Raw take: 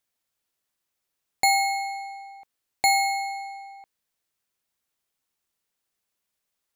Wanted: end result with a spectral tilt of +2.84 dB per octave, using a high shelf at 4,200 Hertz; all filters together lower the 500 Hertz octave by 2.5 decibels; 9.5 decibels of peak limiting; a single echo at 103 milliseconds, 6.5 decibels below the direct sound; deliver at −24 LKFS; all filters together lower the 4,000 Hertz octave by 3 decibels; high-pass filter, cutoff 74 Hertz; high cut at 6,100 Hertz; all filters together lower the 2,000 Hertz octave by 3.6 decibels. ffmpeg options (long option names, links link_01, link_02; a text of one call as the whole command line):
ffmpeg -i in.wav -af "highpass=74,lowpass=6100,equalizer=frequency=500:width_type=o:gain=-3.5,equalizer=frequency=2000:width_type=o:gain=-3.5,equalizer=frequency=4000:width_type=o:gain=-3.5,highshelf=frequency=4200:gain=3.5,alimiter=limit=-21dB:level=0:latency=1,aecho=1:1:103:0.473,volume=5.5dB" out.wav